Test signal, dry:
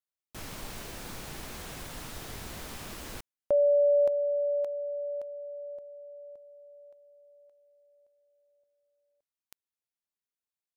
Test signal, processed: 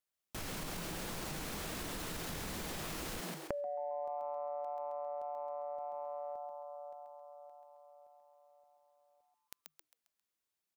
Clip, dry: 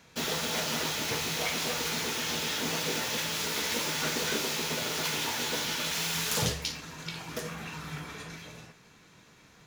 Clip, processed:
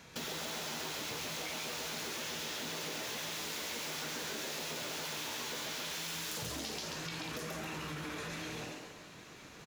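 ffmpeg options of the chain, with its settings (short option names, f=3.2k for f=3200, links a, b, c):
-filter_complex "[0:a]asplit=6[a][b][c][d][e][f];[b]adelay=134,afreqshift=150,volume=-3dB[g];[c]adelay=268,afreqshift=300,volume=-10.5dB[h];[d]adelay=402,afreqshift=450,volume=-18.1dB[i];[e]adelay=536,afreqshift=600,volume=-25.6dB[j];[f]adelay=670,afreqshift=750,volume=-33.1dB[k];[a][g][h][i][j][k]amix=inputs=6:normalize=0,acompressor=threshold=-43dB:ratio=8:attack=9.7:release=46:knee=1:detection=peak,volume=2.5dB"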